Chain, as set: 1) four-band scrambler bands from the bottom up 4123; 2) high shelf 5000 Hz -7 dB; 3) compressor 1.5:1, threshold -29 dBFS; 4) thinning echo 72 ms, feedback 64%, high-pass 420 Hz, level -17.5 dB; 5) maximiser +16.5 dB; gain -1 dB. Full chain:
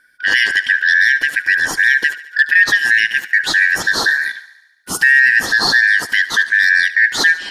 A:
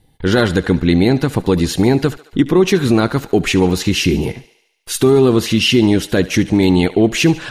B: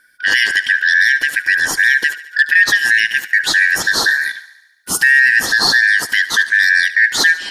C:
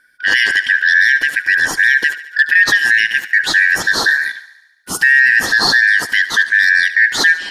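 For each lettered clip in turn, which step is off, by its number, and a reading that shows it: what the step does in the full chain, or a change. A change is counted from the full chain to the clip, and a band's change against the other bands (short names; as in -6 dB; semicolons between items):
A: 1, 250 Hz band +23.5 dB; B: 2, 8 kHz band +4.5 dB; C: 3, mean gain reduction 2.5 dB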